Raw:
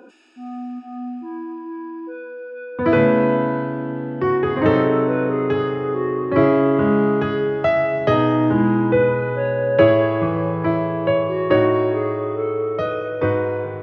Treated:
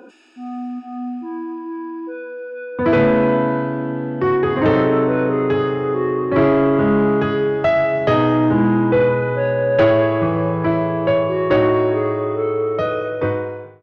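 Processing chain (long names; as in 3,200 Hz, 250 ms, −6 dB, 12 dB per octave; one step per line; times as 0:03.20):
fade-out on the ending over 0.78 s
soft clipping −10.5 dBFS, distortion −17 dB
level +3 dB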